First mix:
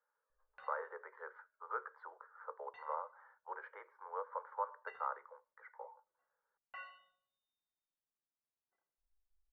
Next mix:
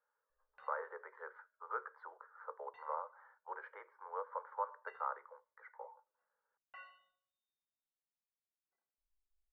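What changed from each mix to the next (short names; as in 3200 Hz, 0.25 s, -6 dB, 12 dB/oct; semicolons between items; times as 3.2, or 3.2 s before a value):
background -4.5 dB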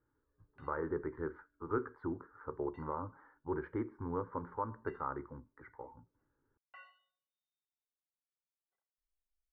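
speech: remove steep high-pass 490 Hz 72 dB/oct; background: send -7.5 dB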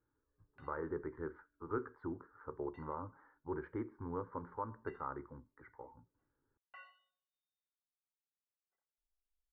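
speech -3.5 dB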